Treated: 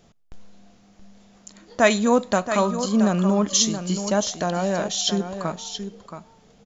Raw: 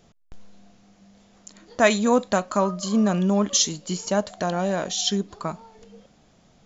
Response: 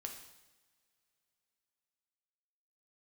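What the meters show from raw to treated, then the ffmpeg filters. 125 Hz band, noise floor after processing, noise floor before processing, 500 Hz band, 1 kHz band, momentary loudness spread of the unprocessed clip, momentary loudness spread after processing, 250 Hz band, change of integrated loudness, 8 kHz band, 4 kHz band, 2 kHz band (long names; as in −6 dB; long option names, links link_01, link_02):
+1.5 dB, −56 dBFS, −58 dBFS, +1.5 dB, +1.0 dB, 12 LU, 13 LU, +1.5 dB, +1.0 dB, can't be measured, +1.0 dB, +1.0 dB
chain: -filter_complex "[0:a]aecho=1:1:675:0.335,asplit=2[link_01][link_02];[1:a]atrim=start_sample=2205[link_03];[link_02][link_03]afir=irnorm=-1:irlink=0,volume=-16dB[link_04];[link_01][link_04]amix=inputs=2:normalize=0"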